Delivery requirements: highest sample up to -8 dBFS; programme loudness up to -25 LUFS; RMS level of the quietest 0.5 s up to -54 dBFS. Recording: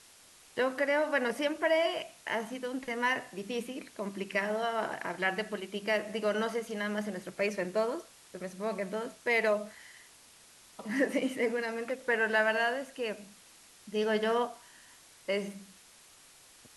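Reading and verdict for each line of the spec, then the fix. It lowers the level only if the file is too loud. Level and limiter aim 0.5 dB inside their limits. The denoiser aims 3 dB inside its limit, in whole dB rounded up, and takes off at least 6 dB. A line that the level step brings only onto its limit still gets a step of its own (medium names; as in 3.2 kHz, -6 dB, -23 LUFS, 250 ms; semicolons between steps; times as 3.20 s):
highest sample -15.5 dBFS: pass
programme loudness -32.0 LUFS: pass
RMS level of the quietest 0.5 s -58 dBFS: pass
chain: none needed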